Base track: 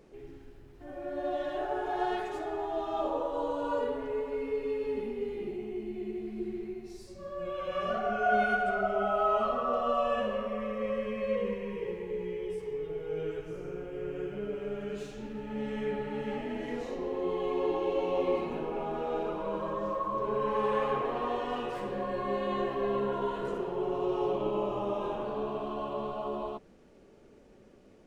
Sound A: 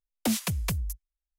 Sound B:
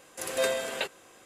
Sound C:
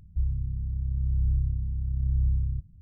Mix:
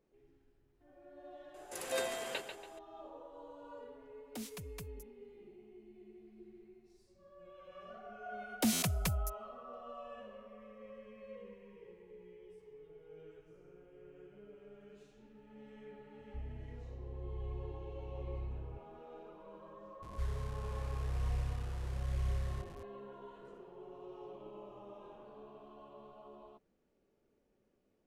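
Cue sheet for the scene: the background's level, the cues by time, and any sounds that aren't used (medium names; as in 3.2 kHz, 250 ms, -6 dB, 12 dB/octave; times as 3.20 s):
base track -19.5 dB
1.54 s: add B -8.5 dB + feedback delay 142 ms, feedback 35%, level -8 dB
4.10 s: add A -18 dB
8.37 s: add A -4.5 dB + buffer glitch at 0.35 s
16.18 s: add C -17.5 dB
20.02 s: add C -10.5 dB + one-bit delta coder 64 kbps, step -34.5 dBFS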